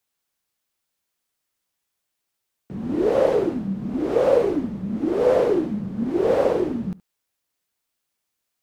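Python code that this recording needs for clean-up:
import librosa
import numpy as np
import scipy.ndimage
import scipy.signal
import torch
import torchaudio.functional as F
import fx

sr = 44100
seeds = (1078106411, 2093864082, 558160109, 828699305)

y = fx.fix_echo_inverse(x, sr, delay_ms=71, level_db=-21.0)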